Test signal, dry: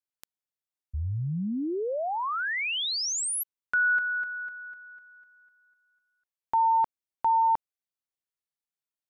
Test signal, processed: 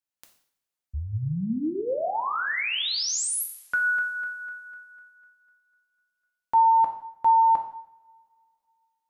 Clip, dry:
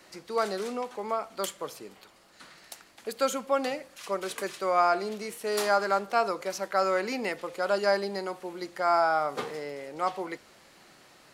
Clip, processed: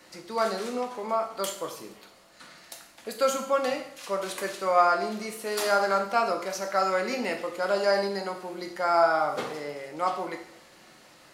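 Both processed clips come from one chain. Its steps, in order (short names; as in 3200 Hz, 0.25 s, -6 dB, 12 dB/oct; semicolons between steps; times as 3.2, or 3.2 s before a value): two-slope reverb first 0.61 s, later 2.6 s, from -27 dB, DRR 2.5 dB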